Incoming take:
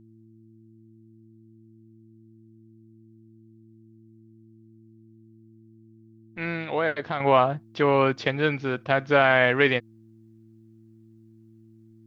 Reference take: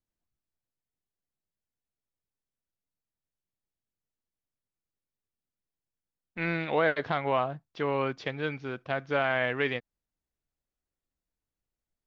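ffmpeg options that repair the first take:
ffmpeg -i in.wav -af "bandreject=frequency=111.4:width_type=h:width=4,bandreject=frequency=222.8:width_type=h:width=4,bandreject=frequency=334.2:width_type=h:width=4,asetnsamples=nb_out_samples=441:pad=0,asendcmd='7.2 volume volume -8.5dB',volume=0dB" out.wav

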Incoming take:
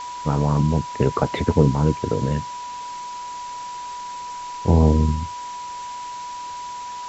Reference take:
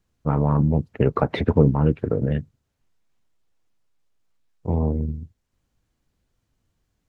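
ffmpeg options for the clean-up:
ffmpeg -i in.wav -af "bandreject=frequency=980:width=30,afwtdn=0.011,asetnsamples=nb_out_samples=441:pad=0,asendcmd='4.36 volume volume -7dB',volume=0dB" out.wav

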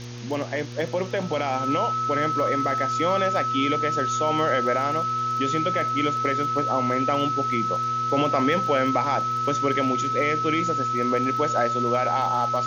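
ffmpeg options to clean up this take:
ffmpeg -i in.wav -af "adeclick=threshold=4,bandreject=frequency=120.2:width_type=h:width=4,bandreject=frequency=240.4:width_type=h:width=4,bandreject=frequency=360.6:width_type=h:width=4,bandreject=frequency=480.8:width_type=h:width=4,bandreject=frequency=1300:width=30,afwtdn=0.01" out.wav

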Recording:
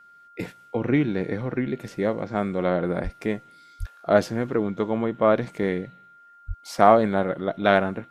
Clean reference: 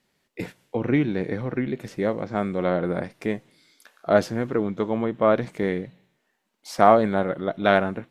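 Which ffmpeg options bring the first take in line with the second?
ffmpeg -i in.wav -filter_complex "[0:a]bandreject=frequency=1400:width=30,asplit=3[link_01][link_02][link_03];[link_01]afade=type=out:start_time=3.03:duration=0.02[link_04];[link_02]highpass=frequency=140:width=0.5412,highpass=frequency=140:width=1.3066,afade=type=in:start_time=3.03:duration=0.02,afade=type=out:start_time=3.15:duration=0.02[link_05];[link_03]afade=type=in:start_time=3.15:duration=0.02[link_06];[link_04][link_05][link_06]amix=inputs=3:normalize=0,asplit=3[link_07][link_08][link_09];[link_07]afade=type=out:start_time=3.79:duration=0.02[link_10];[link_08]highpass=frequency=140:width=0.5412,highpass=frequency=140:width=1.3066,afade=type=in:start_time=3.79:duration=0.02,afade=type=out:start_time=3.91:duration=0.02[link_11];[link_09]afade=type=in:start_time=3.91:duration=0.02[link_12];[link_10][link_11][link_12]amix=inputs=3:normalize=0,asplit=3[link_13][link_14][link_15];[link_13]afade=type=out:start_time=6.47:duration=0.02[link_16];[link_14]highpass=frequency=140:width=0.5412,highpass=frequency=140:width=1.3066,afade=type=in:start_time=6.47:duration=0.02,afade=type=out:start_time=6.59:duration=0.02[link_17];[link_15]afade=type=in:start_time=6.59:duration=0.02[link_18];[link_16][link_17][link_18]amix=inputs=3:normalize=0" out.wav

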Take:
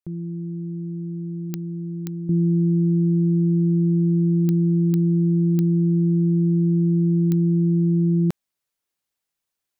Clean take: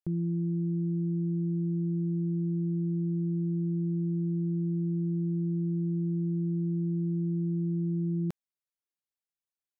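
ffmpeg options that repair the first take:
ffmpeg -i in.wav -af "adeclick=threshold=4,asetnsamples=nb_out_samples=441:pad=0,asendcmd='2.29 volume volume -11dB',volume=0dB" out.wav

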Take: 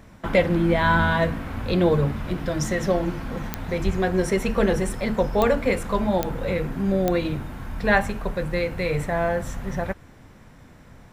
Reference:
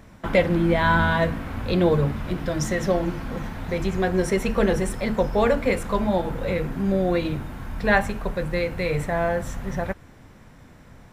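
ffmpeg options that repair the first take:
ffmpeg -i in.wav -filter_complex "[0:a]adeclick=threshold=4,asplit=3[link_01][link_02][link_03];[link_01]afade=type=out:start_time=3.85:duration=0.02[link_04];[link_02]highpass=frequency=140:width=0.5412,highpass=frequency=140:width=1.3066,afade=type=in:start_time=3.85:duration=0.02,afade=type=out:start_time=3.97:duration=0.02[link_05];[link_03]afade=type=in:start_time=3.97:duration=0.02[link_06];[link_04][link_05][link_06]amix=inputs=3:normalize=0" out.wav

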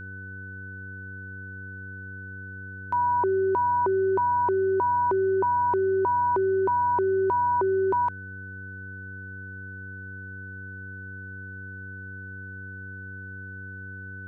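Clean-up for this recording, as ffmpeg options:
ffmpeg -i in.wav -af "bandreject=frequency=96:width_type=h:width=4,bandreject=frequency=192:width_type=h:width=4,bandreject=frequency=288:width_type=h:width=4,bandreject=frequency=384:width_type=h:width=4,bandreject=frequency=480:width_type=h:width=4,bandreject=frequency=1500:width=30" out.wav

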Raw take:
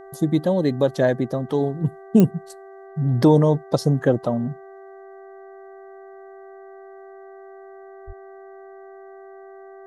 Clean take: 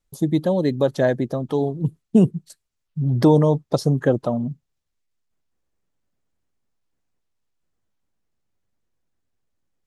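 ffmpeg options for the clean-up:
ffmpeg -i in.wav -filter_complex "[0:a]adeclick=threshold=4,bandreject=frequency=388.1:width_type=h:width=4,bandreject=frequency=776.2:width_type=h:width=4,bandreject=frequency=1164.3:width_type=h:width=4,bandreject=frequency=1552.4:width_type=h:width=4,bandreject=frequency=1940.5:width_type=h:width=4,bandreject=frequency=680:width=30,asplit=3[link_01][link_02][link_03];[link_01]afade=type=out:start_time=8.06:duration=0.02[link_04];[link_02]highpass=frequency=140:width=0.5412,highpass=frequency=140:width=1.3066,afade=type=in:start_time=8.06:duration=0.02,afade=type=out:start_time=8.18:duration=0.02[link_05];[link_03]afade=type=in:start_time=8.18:duration=0.02[link_06];[link_04][link_05][link_06]amix=inputs=3:normalize=0" out.wav

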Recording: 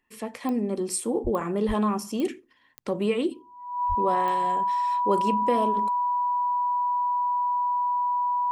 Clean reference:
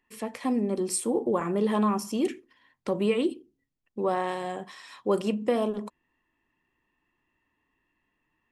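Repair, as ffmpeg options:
ffmpeg -i in.wav -filter_complex "[0:a]adeclick=threshold=4,bandreject=frequency=980:width=30,asplit=3[link_01][link_02][link_03];[link_01]afade=type=out:start_time=1.23:duration=0.02[link_04];[link_02]highpass=frequency=140:width=0.5412,highpass=frequency=140:width=1.3066,afade=type=in:start_time=1.23:duration=0.02,afade=type=out:start_time=1.35:duration=0.02[link_05];[link_03]afade=type=in:start_time=1.35:duration=0.02[link_06];[link_04][link_05][link_06]amix=inputs=3:normalize=0,asplit=3[link_07][link_08][link_09];[link_07]afade=type=out:start_time=1.67:duration=0.02[link_10];[link_08]highpass=frequency=140:width=0.5412,highpass=frequency=140:width=1.3066,afade=type=in:start_time=1.67:duration=0.02,afade=type=out:start_time=1.79:duration=0.02[link_11];[link_09]afade=type=in:start_time=1.79:duration=0.02[link_12];[link_10][link_11][link_12]amix=inputs=3:normalize=0,asplit=3[link_13][link_14][link_15];[link_13]afade=type=out:start_time=3.88:duration=0.02[link_16];[link_14]highpass=frequency=140:width=0.5412,highpass=frequency=140:width=1.3066,afade=type=in:start_time=3.88:duration=0.02,afade=type=out:start_time=4:duration=0.02[link_17];[link_15]afade=type=in:start_time=4:duration=0.02[link_18];[link_16][link_17][link_18]amix=inputs=3:normalize=0" out.wav

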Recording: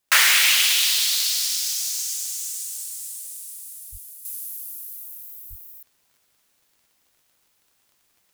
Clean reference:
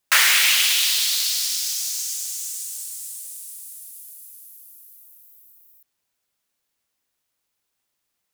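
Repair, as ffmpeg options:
ffmpeg -i in.wav -filter_complex "[0:a]adeclick=threshold=4,asplit=3[link_01][link_02][link_03];[link_01]afade=type=out:start_time=3.91:duration=0.02[link_04];[link_02]highpass=frequency=140:width=0.5412,highpass=frequency=140:width=1.3066,afade=type=in:start_time=3.91:duration=0.02,afade=type=out:start_time=4.03:duration=0.02[link_05];[link_03]afade=type=in:start_time=4.03:duration=0.02[link_06];[link_04][link_05][link_06]amix=inputs=3:normalize=0,asplit=3[link_07][link_08][link_09];[link_07]afade=type=out:start_time=5.49:duration=0.02[link_10];[link_08]highpass=frequency=140:width=0.5412,highpass=frequency=140:width=1.3066,afade=type=in:start_time=5.49:duration=0.02,afade=type=out:start_time=5.61:duration=0.02[link_11];[link_09]afade=type=in:start_time=5.61:duration=0.02[link_12];[link_10][link_11][link_12]amix=inputs=3:normalize=0,asetnsamples=nb_out_samples=441:pad=0,asendcmd='4.25 volume volume -10.5dB',volume=0dB" out.wav

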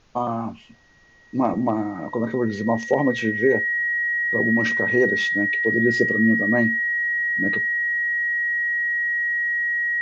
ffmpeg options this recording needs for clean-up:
ffmpeg -i in.wav -af "bandreject=frequency=1900:width=30,agate=range=-21dB:threshold=-26dB" out.wav

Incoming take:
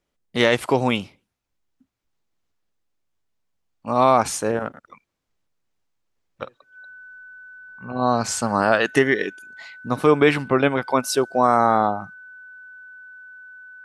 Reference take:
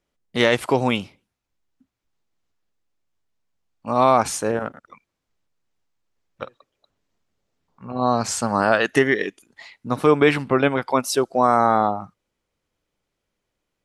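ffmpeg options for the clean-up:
ffmpeg -i in.wav -af "bandreject=frequency=1500:width=30" out.wav

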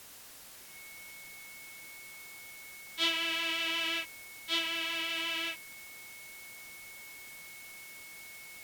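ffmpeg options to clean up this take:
ffmpeg -i in.wav -af "bandreject=frequency=2200:width=30,afwtdn=0.0028" out.wav

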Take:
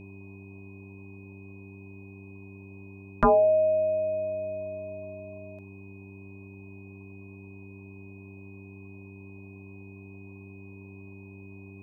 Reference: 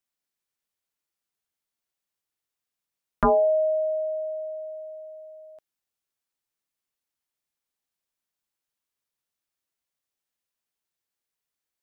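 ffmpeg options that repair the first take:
ffmpeg -i in.wav -af "bandreject=frequency=97.7:width_type=h:width=4,bandreject=frequency=195.4:width_type=h:width=4,bandreject=frequency=293.1:width_type=h:width=4,bandreject=frequency=390.8:width_type=h:width=4,bandreject=frequency=2500:width=30,afwtdn=0.0025" out.wav

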